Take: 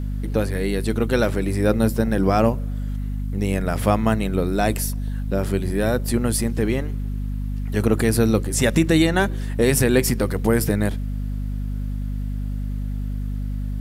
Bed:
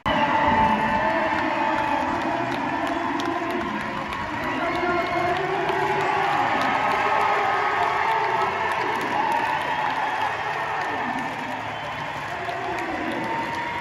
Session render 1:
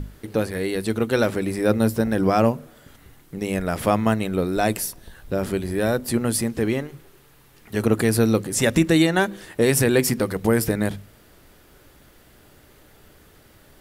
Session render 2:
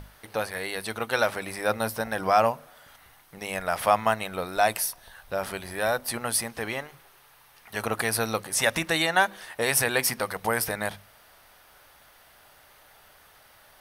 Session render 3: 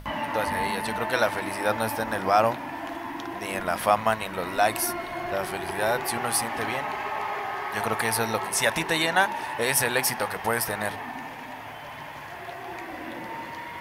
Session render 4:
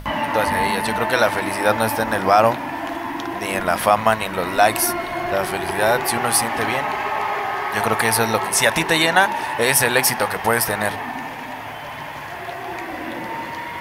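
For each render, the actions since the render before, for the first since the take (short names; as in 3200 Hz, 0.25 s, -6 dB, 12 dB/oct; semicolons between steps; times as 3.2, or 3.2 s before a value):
notches 50/100/150/200/250 Hz
resonant low shelf 510 Hz -13 dB, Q 1.5; notch 7300 Hz, Q 5.7
add bed -9.5 dB
gain +7.5 dB; limiter -2 dBFS, peak gain reduction 2.5 dB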